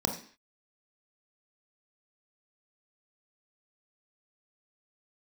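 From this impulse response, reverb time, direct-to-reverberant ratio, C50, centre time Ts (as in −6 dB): 0.45 s, 2.5 dB, 7.5 dB, 21 ms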